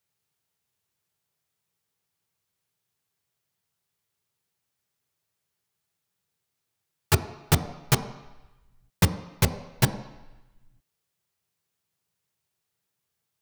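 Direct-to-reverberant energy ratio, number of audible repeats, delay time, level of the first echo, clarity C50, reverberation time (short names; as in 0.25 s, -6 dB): 8.0 dB, none, none, none, 12.0 dB, 1.0 s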